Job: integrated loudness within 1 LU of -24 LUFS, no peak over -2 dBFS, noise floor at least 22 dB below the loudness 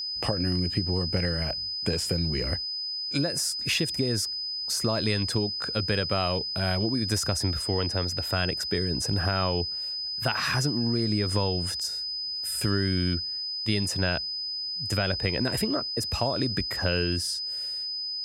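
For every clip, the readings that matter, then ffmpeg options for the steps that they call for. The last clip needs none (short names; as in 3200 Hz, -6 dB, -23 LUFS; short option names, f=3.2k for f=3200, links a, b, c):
steady tone 5000 Hz; tone level -30 dBFS; loudness -27.0 LUFS; peak -11.0 dBFS; loudness target -24.0 LUFS
-> -af "bandreject=f=5k:w=30"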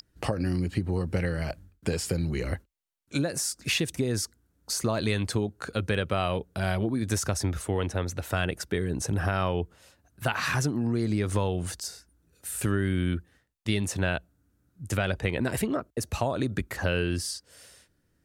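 steady tone none; loudness -29.5 LUFS; peak -12.0 dBFS; loudness target -24.0 LUFS
-> -af "volume=5.5dB"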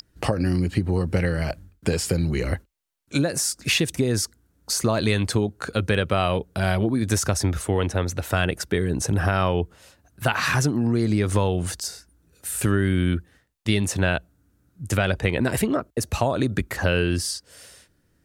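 loudness -24.0 LUFS; peak -6.5 dBFS; noise floor -66 dBFS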